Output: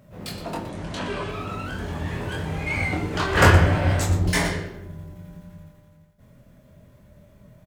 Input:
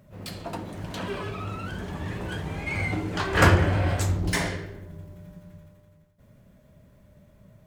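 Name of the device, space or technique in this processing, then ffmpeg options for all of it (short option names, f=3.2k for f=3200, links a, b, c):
slapback doubling: -filter_complex "[0:a]asplit=3[a][b][c];[b]adelay=24,volume=-3.5dB[d];[c]adelay=119,volume=-11dB[e];[a][d][e]amix=inputs=3:normalize=0,asettb=1/sr,asplit=3[f][g][h];[f]atrim=end=0.694[i];[g]atrim=start=0.69:end=1.29,asetpts=PTS-STARTPTS,afade=t=in:d=0.004:c=qsin,afade=t=out:st=0.596:d=0.004:c=qsin,lowpass=f=9.7k:w=0.5412,lowpass=f=9.7k:w=1.3066[j];[h]atrim=start=1.286[k];[i][j]acrossfade=d=0.004:c1=hsin:c2=qsin[l];[l][k]acrossfade=d=0.004:c1=qsin:c2=hsin,volume=2dB"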